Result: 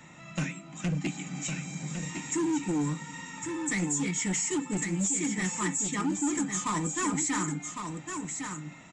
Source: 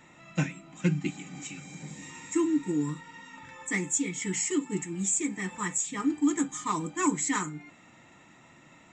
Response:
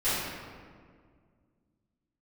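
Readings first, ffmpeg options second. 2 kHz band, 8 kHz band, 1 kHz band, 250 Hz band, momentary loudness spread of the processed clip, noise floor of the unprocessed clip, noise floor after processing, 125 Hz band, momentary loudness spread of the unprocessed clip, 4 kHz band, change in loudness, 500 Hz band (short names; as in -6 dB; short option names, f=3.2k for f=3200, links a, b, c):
+0.5 dB, +1.0 dB, 0.0 dB, -1.0 dB, 8 LU, -56 dBFS, -49 dBFS, +1.5 dB, 15 LU, +3.0 dB, -1.0 dB, -1.5 dB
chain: -filter_complex "[0:a]equalizer=f=160:t=o:w=0.67:g=6,equalizer=f=400:t=o:w=0.67:g=-3,equalizer=f=6.3k:t=o:w=0.67:g=4,acrossover=split=180[a][b];[a]acompressor=threshold=-43dB:ratio=6[c];[b]alimiter=limit=-22dB:level=0:latency=1:release=78[d];[c][d]amix=inputs=2:normalize=0,volume=28.5dB,asoftclip=hard,volume=-28.5dB,asplit=2[e][f];[f]aecho=0:1:1106:0.473[g];[e][g]amix=inputs=2:normalize=0,aresample=22050,aresample=44100,volume=3dB"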